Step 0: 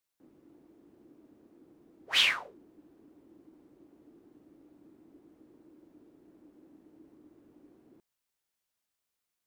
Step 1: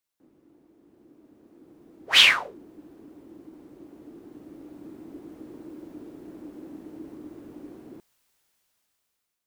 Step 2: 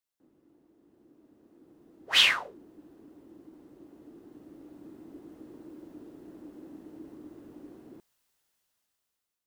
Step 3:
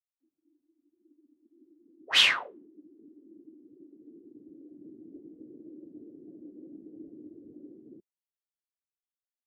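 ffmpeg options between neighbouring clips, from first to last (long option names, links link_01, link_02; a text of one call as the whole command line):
ffmpeg -i in.wav -af "dynaudnorm=framelen=700:gausssize=5:maxgain=16dB" out.wav
ffmpeg -i in.wav -af "bandreject=frequency=2300:width=17,volume=-5dB" out.wav
ffmpeg -i in.wav -af "afftdn=noise_reduction=30:noise_floor=-46" out.wav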